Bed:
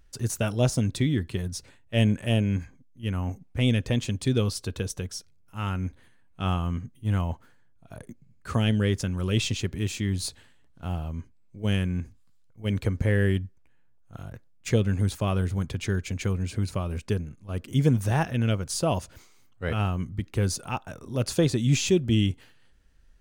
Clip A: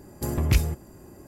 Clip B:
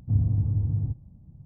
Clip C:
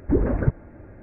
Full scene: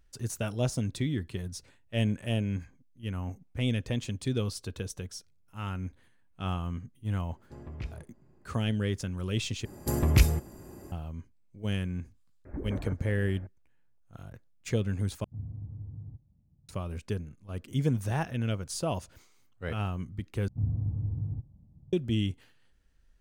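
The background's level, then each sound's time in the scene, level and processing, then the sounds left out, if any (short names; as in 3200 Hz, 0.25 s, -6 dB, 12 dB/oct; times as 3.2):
bed -6 dB
7.29 add A -17.5 dB + LPF 3300 Hz
9.65 replace with A
12.45 add C -4.5 dB + compressor, threshold -29 dBFS
15.24 replace with B -16.5 dB
20.48 replace with B -7 dB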